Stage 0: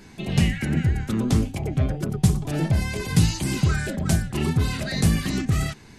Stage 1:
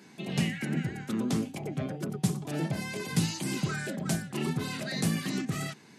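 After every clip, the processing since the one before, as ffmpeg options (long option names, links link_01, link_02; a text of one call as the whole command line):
ffmpeg -i in.wav -af "highpass=frequency=150:width=0.5412,highpass=frequency=150:width=1.3066,volume=-5.5dB" out.wav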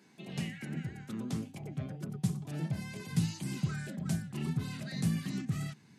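ffmpeg -i in.wav -af "asubboost=boost=5:cutoff=180,volume=-9dB" out.wav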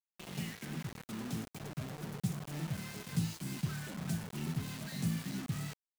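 ffmpeg -i in.wav -af "acrusher=bits=6:mix=0:aa=0.000001,volume=-3.5dB" out.wav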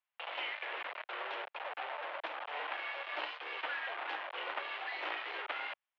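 ffmpeg -i in.wav -af "acrusher=bits=2:mode=log:mix=0:aa=0.000001,highpass=frequency=480:width_type=q:width=0.5412,highpass=frequency=480:width_type=q:width=1.307,lowpass=frequency=3000:width_type=q:width=0.5176,lowpass=frequency=3000:width_type=q:width=0.7071,lowpass=frequency=3000:width_type=q:width=1.932,afreqshift=140,volume=9.5dB" out.wav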